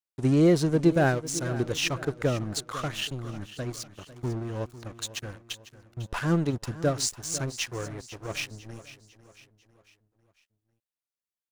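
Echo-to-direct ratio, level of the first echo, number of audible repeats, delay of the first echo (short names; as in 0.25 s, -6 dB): -14.5 dB, -15.5 dB, 3, 0.499 s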